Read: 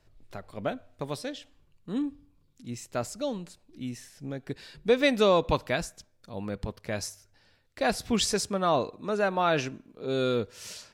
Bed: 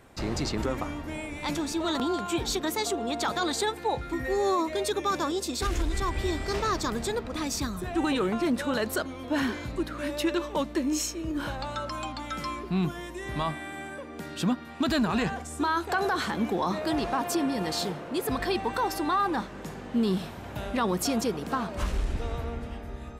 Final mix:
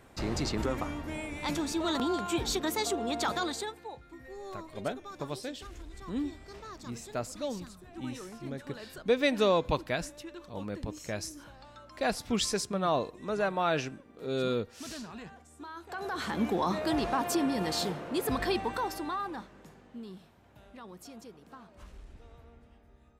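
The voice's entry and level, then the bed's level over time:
4.20 s, -3.5 dB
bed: 3.34 s -2 dB
4.01 s -18 dB
15.73 s -18 dB
16.39 s -1.5 dB
18.50 s -1.5 dB
20.24 s -21 dB

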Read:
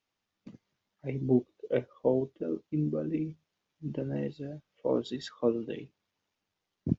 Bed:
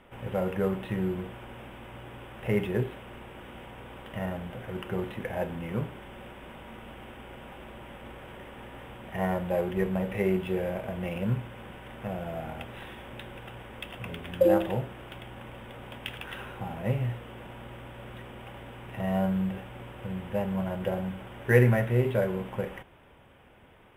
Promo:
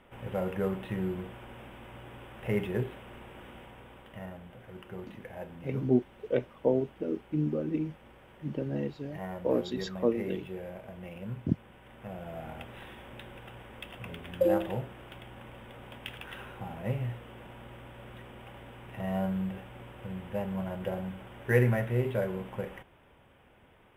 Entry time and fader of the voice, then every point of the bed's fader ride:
4.60 s, +0.5 dB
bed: 3.46 s -3 dB
4.37 s -10.5 dB
11.69 s -10.5 dB
12.52 s -4 dB

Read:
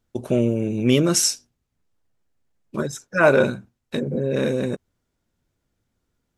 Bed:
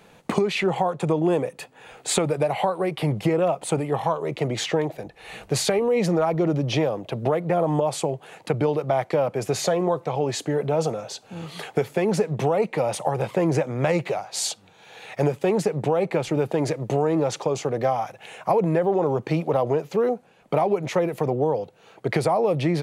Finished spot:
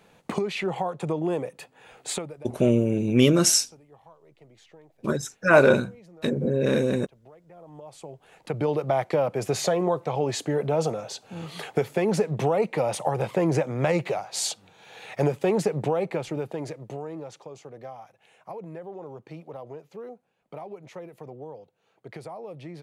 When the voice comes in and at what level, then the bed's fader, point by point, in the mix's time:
2.30 s, -0.5 dB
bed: 2.10 s -5.5 dB
2.56 s -29 dB
7.48 s -29 dB
8.73 s -1.5 dB
15.76 s -1.5 dB
17.45 s -18 dB

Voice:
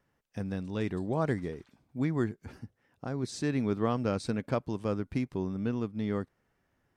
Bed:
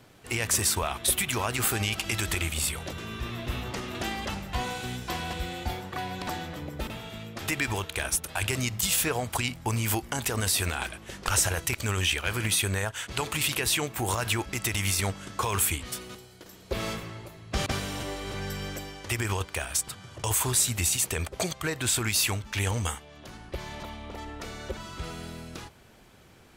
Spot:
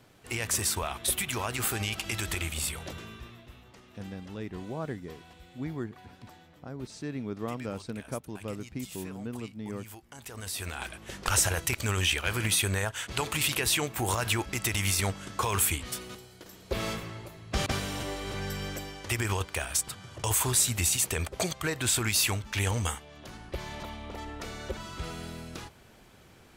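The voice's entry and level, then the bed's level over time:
3.60 s, -6.0 dB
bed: 2.95 s -3.5 dB
3.55 s -19.5 dB
9.99 s -19.5 dB
11.09 s -0.5 dB

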